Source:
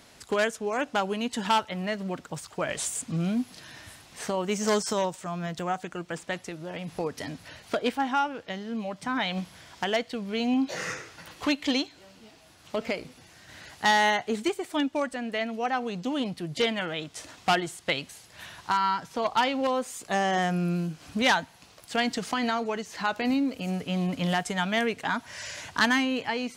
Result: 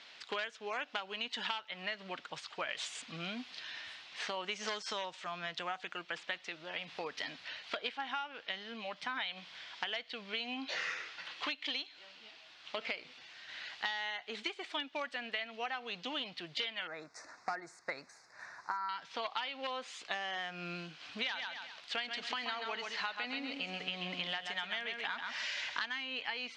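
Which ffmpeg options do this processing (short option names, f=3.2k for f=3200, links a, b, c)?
-filter_complex "[0:a]asettb=1/sr,asplit=3[a][b][c];[a]atrim=end=16.874[d];[b]atrim=start=16.87:end=18.89,asetpts=PTS-STARTPTS,afade=t=in:d=0.004:c=qsin,afade=t=out:st=2.016:d=0.004:c=qsin,asuperstop=centerf=3100:order=4:qfactor=0.78[e];[c]atrim=start=18.886[f];[d][e]acrossfade=d=0.004:c1=hsin:c2=qsin[g];[g][f]acrossfade=d=0.004:c1=qsin:c2=hsin,asettb=1/sr,asplit=3[h][i][j];[h]atrim=end=21.114[k];[i]atrim=start=21.11:end=25.89,asetpts=PTS-STARTPTS,afade=t=in:d=0.004:c=qsin,afade=t=out:st=4.776:d=0.004:c=qsin,aecho=1:1:132|264|396:0.447|0.116|0.0302,atrim=end_sample=210798[l];[j]atrim=start=25.886[m];[k][l]acrossfade=d=0.004:c1=hsin:c2=qsin[n];[n][m]acrossfade=d=0.004:c1=qsin:c2=hsin,lowpass=f=3.6k:w=0.5412,lowpass=f=3.6k:w=1.3066,aderivative,acompressor=threshold=-47dB:ratio=16,volume=13dB"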